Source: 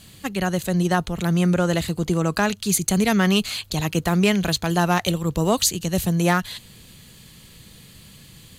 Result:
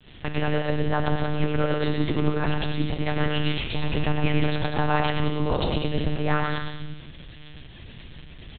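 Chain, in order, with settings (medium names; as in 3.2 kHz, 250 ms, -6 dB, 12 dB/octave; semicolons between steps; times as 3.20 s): hum notches 60/120/180 Hz; in parallel at 0 dB: compressor with a negative ratio -26 dBFS, ratio -0.5; on the sum: short-mantissa float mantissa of 2-bit; volume shaper 102 bpm, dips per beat 1, -16 dB, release 120 ms; on a send: bouncing-ball echo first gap 110 ms, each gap 0.7×, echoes 5; on the sum: simulated room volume 700 m³, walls mixed, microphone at 0.88 m; monotone LPC vocoder at 8 kHz 150 Hz; trim -7.5 dB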